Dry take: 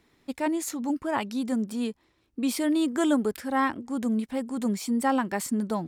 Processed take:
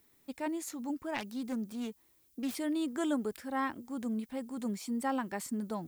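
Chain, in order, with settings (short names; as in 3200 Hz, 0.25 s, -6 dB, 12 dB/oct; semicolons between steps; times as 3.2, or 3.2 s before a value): 1.14–2.55 self-modulated delay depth 0.27 ms; added noise violet -60 dBFS; gain -8.5 dB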